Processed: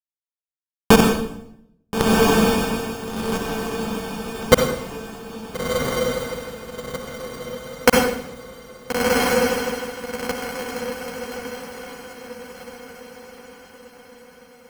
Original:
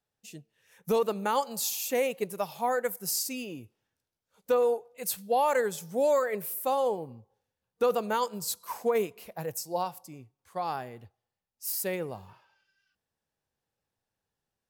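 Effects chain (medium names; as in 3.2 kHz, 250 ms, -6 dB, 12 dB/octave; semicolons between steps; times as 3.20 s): high-pass 56 Hz 12 dB/octave; band-stop 3.4 kHz, Q 6.7; low-pass that closes with the level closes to 2.4 kHz, closed at -25.5 dBFS; amplifier tone stack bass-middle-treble 10-0-1; hum notches 60/120/180/240/300/360/420/480/540 Hz; in parallel at +2 dB: level held to a coarse grid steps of 12 dB; on the sum: companded quantiser 2-bit; rotary cabinet horn 6.3 Hz, later 0.7 Hz, at 3.10 s; decimation with a swept rate 17×, swing 60% 0.22 Hz; echo that smears into a reverb 1391 ms, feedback 43%, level -5.5 dB; on a send at -8.5 dB: reverberation RT60 0.75 s, pre-delay 50 ms; on the sum: loudness maximiser +32 dB; trim -1 dB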